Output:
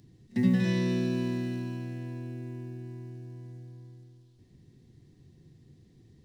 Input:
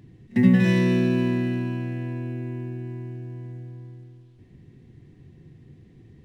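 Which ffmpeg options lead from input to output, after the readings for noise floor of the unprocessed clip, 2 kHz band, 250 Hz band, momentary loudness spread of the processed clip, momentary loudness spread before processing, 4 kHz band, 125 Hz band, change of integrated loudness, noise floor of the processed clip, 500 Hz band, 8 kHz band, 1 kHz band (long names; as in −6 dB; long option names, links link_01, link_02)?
−53 dBFS, −9.5 dB, −7.5 dB, 19 LU, 19 LU, −4.5 dB, −7.5 dB, −7.5 dB, −60 dBFS, −7.5 dB, can't be measured, −8.0 dB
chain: -filter_complex "[0:a]highshelf=frequency=3400:width_type=q:width=1.5:gain=8.5,acrossover=split=4600[link_01][link_02];[link_02]acompressor=threshold=-47dB:ratio=4:attack=1:release=60[link_03];[link_01][link_03]amix=inputs=2:normalize=0,volume=-7.5dB"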